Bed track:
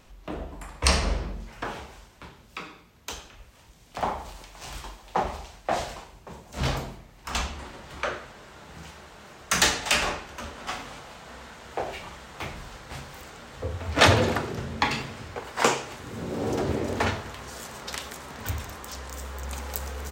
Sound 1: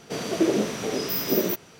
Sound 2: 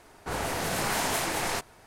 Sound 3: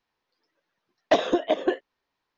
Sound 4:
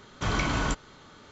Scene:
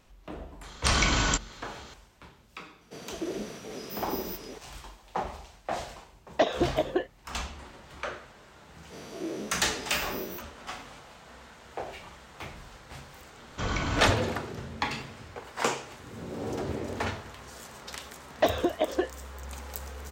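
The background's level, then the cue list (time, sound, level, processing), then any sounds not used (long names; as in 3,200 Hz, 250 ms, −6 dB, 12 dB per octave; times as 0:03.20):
bed track −6 dB
0:00.63: mix in 4 −1.5 dB + high-shelf EQ 2,300 Hz +12 dB
0:02.81: mix in 1 −13 dB + delay that plays each chunk backwards 443 ms, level −2.5 dB
0:05.28: mix in 3 −4 dB
0:08.83: mix in 1 −17.5 dB + every bin's largest magnitude spread in time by 60 ms
0:13.37: mix in 4 −3.5 dB
0:17.31: mix in 3 −4 dB
not used: 2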